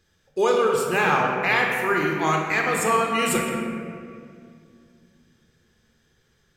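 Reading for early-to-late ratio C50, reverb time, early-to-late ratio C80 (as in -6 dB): 1.0 dB, 2.3 s, 2.5 dB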